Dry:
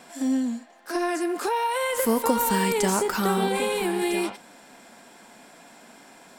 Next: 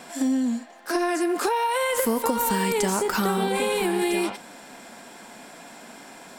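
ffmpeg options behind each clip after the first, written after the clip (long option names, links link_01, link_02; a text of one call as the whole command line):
ffmpeg -i in.wav -af "acompressor=threshold=-26dB:ratio=5,volume=5.5dB" out.wav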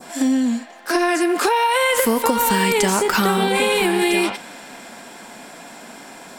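ffmpeg -i in.wav -af "adynamicequalizer=threshold=0.00708:dfrequency=2600:dqfactor=0.76:tfrequency=2600:tqfactor=0.76:attack=5:release=100:ratio=0.375:range=2.5:mode=boostabove:tftype=bell,volume=5dB" out.wav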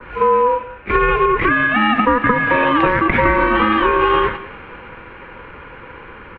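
ffmpeg -i in.wav -af "aeval=exprs='val(0)*sin(2*PI*1000*n/s)':channel_layout=same,highpass=frequency=210:width_type=q:width=0.5412,highpass=frequency=210:width_type=q:width=1.307,lowpass=frequency=2800:width_type=q:width=0.5176,lowpass=frequency=2800:width_type=q:width=0.7071,lowpass=frequency=2800:width_type=q:width=1.932,afreqshift=-260,aecho=1:1:186:0.126,volume=7dB" out.wav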